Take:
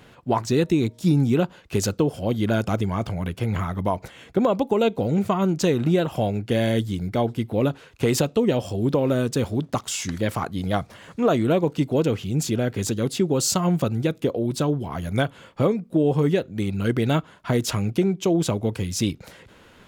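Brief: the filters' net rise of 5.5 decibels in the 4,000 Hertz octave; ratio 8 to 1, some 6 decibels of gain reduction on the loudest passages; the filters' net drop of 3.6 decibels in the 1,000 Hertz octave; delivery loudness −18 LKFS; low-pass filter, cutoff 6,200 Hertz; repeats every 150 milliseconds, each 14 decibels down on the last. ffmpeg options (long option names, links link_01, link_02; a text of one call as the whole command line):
ffmpeg -i in.wav -af "lowpass=6200,equalizer=frequency=1000:width_type=o:gain=-5.5,equalizer=frequency=4000:width_type=o:gain=8,acompressor=threshold=-22dB:ratio=8,aecho=1:1:150|300:0.2|0.0399,volume=9.5dB" out.wav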